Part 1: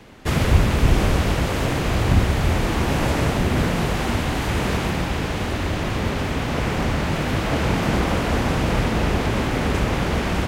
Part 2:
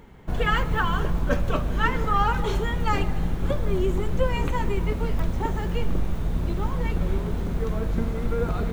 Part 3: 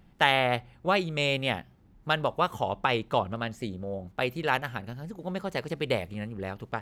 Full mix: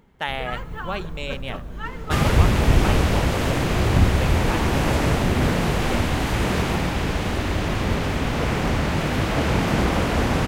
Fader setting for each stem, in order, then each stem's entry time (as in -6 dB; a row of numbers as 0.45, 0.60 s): 0.0, -9.0, -5.0 dB; 1.85, 0.00, 0.00 s